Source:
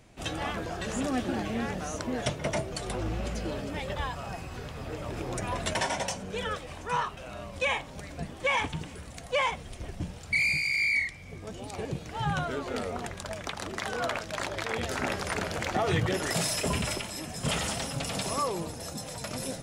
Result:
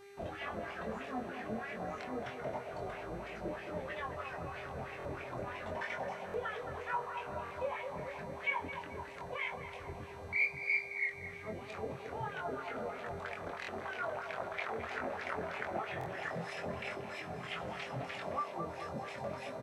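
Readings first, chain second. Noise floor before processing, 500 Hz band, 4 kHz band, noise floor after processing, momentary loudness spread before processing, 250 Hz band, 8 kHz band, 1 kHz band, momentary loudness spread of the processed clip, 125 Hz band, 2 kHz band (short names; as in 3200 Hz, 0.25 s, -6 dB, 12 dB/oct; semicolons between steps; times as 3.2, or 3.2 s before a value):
-44 dBFS, -6.5 dB, -15.5 dB, -47 dBFS, 11 LU, -11.0 dB, under -20 dB, -6.5 dB, 7 LU, -12.5 dB, -7.0 dB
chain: in parallel at -4.5 dB: bit-crush 8-bit; on the sum: compressor, threshold -31 dBFS, peak gain reduction 12.5 dB; bell 570 Hz -11.5 dB 2.2 oct; flange 0.21 Hz, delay 1.2 ms, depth 7.7 ms, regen -73%; wah 3.1 Hz 540–2400 Hz, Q 3.6; HPF 67 Hz; tilt -3.5 dB/oct; narrowing echo 0.217 s, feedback 81%, band-pass 710 Hz, level -6 dB; buzz 400 Hz, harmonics 33, -69 dBFS -7 dB/oct; doubler 23 ms -4 dB; stuck buffer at 4.98/6.27/7.44/13.61/15.99, samples 1024, times 2; gain +12.5 dB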